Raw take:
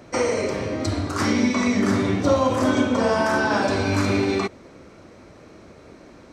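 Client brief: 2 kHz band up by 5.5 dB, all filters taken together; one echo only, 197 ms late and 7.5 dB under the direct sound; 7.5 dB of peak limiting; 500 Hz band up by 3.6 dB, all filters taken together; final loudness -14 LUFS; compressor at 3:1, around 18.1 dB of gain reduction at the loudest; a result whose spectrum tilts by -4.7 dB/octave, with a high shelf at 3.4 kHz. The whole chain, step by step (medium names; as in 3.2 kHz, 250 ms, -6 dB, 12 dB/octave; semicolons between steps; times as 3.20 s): peaking EQ 500 Hz +4 dB; peaking EQ 2 kHz +9 dB; treble shelf 3.4 kHz -6.5 dB; compression 3:1, threshold -38 dBFS; peak limiter -29 dBFS; delay 197 ms -7.5 dB; trim +24 dB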